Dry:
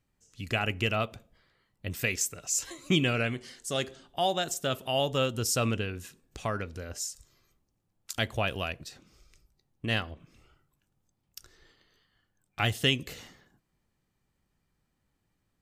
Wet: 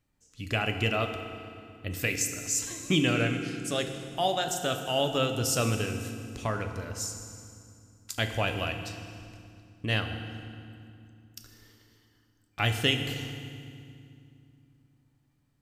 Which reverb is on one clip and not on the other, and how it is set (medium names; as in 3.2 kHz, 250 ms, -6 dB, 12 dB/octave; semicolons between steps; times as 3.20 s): FDN reverb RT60 2.4 s, low-frequency decay 1.6×, high-frequency decay 0.85×, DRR 5.5 dB